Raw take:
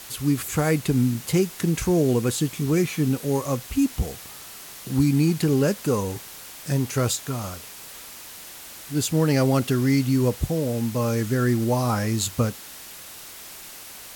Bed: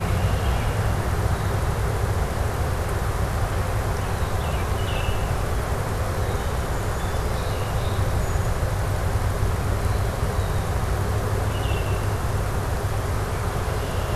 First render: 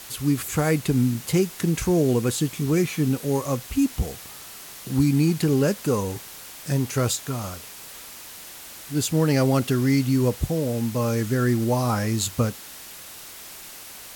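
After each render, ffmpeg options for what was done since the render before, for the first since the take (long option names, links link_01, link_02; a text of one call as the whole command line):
ffmpeg -i in.wav -af anull out.wav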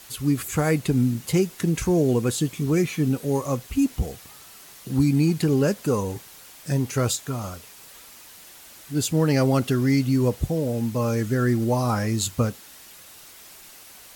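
ffmpeg -i in.wav -af "afftdn=noise_reduction=6:noise_floor=-41" out.wav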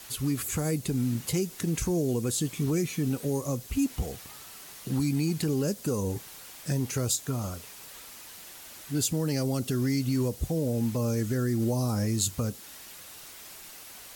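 ffmpeg -i in.wav -filter_complex "[0:a]acrossover=split=540|4300[link_01][link_02][link_03];[link_01]alimiter=limit=-21dB:level=0:latency=1:release=137[link_04];[link_02]acompressor=threshold=-41dB:ratio=6[link_05];[link_04][link_05][link_03]amix=inputs=3:normalize=0" out.wav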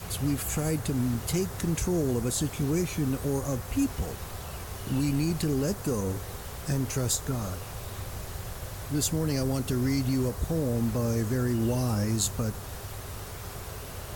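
ffmpeg -i in.wav -i bed.wav -filter_complex "[1:a]volume=-15dB[link_01];[0:a][link_01]amix=inputs=2:normalize=0" out.wav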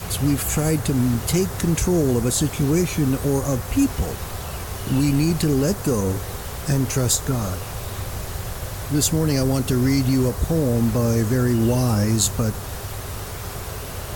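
ffmpeg -i in.wav -af "volume=8dB" out.wav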